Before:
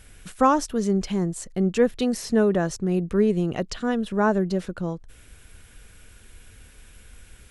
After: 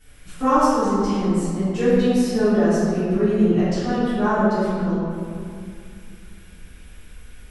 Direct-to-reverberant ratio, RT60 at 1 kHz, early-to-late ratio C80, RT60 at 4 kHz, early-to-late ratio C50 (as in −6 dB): −16.0 dB, 2.2 s, −1.5 dB, 1.3 s, −5.0 dB